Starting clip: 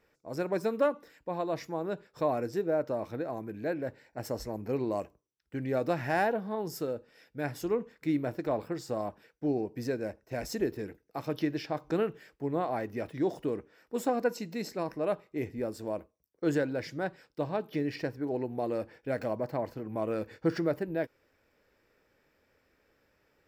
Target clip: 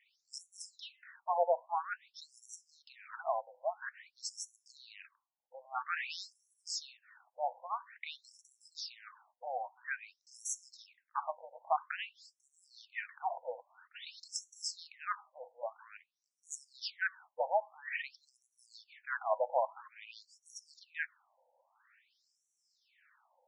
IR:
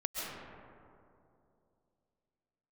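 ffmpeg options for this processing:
-af "equalizer=f=590:w=6.3:g=-10.5,afftfilt=real='re*between(b*sr/1024,670*pow(8000/670,0.5+0.5*sin(2*PI*0.5*pts/sr))/1.41,670*pow(8000/670,0.5+0.5*sin(2*PI*0.5*pts/sr))*1.41)':imag='im*between(b*sr/1024,670*pow(8000/670,0.5+0.5*sin(2*PI*0.5*pts/sr))/1.41,670*pow(8000/670,0.5+0.5*sin(2*PI*0.5*pts/sr))*1.41)':win_size=1024:overlap=0.75,volume=8dB"

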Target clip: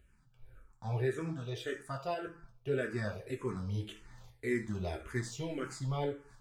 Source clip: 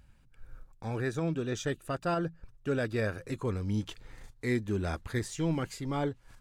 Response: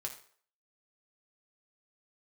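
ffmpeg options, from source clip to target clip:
-filter_complex "[0:a]asettb=1/sr,asplit=3[a][b][c];[a]atrim=end=1.334[d];[b]atrim=start=1.33:end=2.27,asetpts=PTS-STARTPTS,afade=t=in:d=0.004:c=qsin,afade=t=out:st=0.936:d=0.004:c=qsin,lowshelf=f=380:g=-6.5[e];[c]atrim=start=2.266[f];[d][e]acrossfade=d=0.004:c1=hsin:c2=qsin[g];[g][f]acrossfade=d=0.004:c1=qsin:c2=hsin[h];[1:a]atrim=start_sample=2205[i];[h][i]afir=irnorm=-1:irlink=0,asplit=2[j][k];[k]afreqshift=-1.8[l];[j][l]amix=inputs=2:normalize=1"

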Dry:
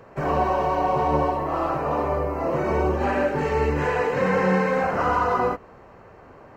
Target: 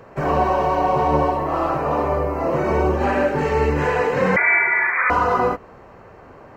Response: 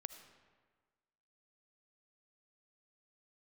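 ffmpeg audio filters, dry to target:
-filter_complex "[0:a]asettb=1/sr,asplit=3[a][b][c];[a]atrim=end=4.364[d];[b]atrim=start=4.36:end=5.1,asetpts=PTS-STARTPTS,afade=t=in:d=0.004:c=qsin,afade=t=out:st=0.736:d=0.004:c=qsin,lowpass=f=2.1k:t=q:w=0.5098,lowpass=f=2.1k:t=q:w=0.6013,lowpass=f=2.1k:t=q:w=0.9,lowpass=f=2.1k:t=q:w=2.563,afreqshift=-2500[e];[c]atrim=start=5.096[f];[d][e]acrossfade=d=0.004:c1=hsin:c2=qsin[g];[g][f]acrossfade=d=0.004:c1=qsin:c2=hsin,volume=3.5dB"

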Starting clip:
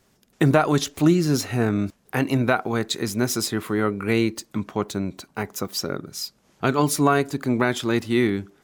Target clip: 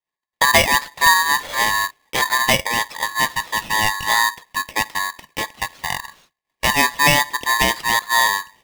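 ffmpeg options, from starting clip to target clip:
-af "highpass=f=160:t=q:w=0.5412,highpass=f=160:t=q:w=1.307,lowpass=f=2.8k:t=q:w=0.5176,lowpass=f=2.8k:t=q:w=0.7071,lowpass=f=2.8k:t=q:w=1.932,afreqshift=110,agate=range=-33dB:threshold=-48dB:ratio=3:detection=peak,aeval=exprs='val(0)*sgn(sin(2*PI*1400*n/s))':c=same,volume=4dB"

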